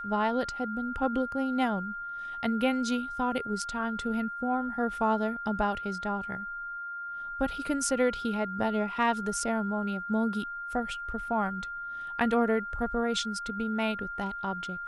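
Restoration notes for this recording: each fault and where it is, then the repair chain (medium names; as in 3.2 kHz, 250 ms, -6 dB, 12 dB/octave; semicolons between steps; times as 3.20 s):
whine 1.4 kHz -35 dBFS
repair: band-stop 1.4 kHz, Q 30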